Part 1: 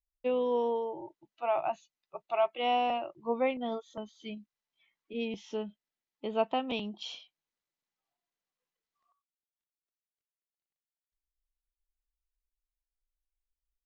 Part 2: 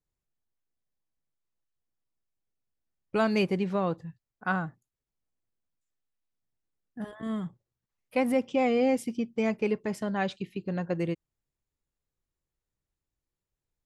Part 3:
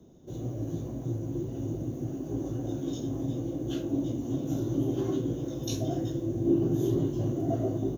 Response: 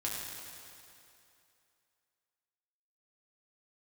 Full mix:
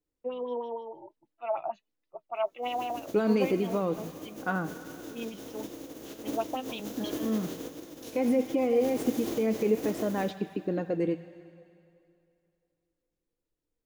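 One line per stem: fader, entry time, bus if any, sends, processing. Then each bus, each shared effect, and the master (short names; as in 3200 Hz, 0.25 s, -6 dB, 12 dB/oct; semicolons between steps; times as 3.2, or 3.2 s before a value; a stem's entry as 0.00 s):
-2.5 dB, 0.00 s, no bus, no send, LFO low-pass sine 6.4 Hz 600–4900 Hz
-1.5 dB, 0.00 s, bus A, send -10.5 dB, dry
-8.5 dB, 2.35 s, bus A, send -17.5 dB, spectral contrast lowered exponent 0.31; upward expander 1.5:1, over -42 dBFS
bus A: 0.0 dB, small resonant body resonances 310/460 Hz, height 16 dB, ringing for 35 ms; limiter -15 dBFS, peak gain reduction 10.5 dB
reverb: on, RT60 2.7 s, pre-delay 5 ms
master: flange 1.4 Hz, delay 2.7 ms, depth 2.5 ms, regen +65%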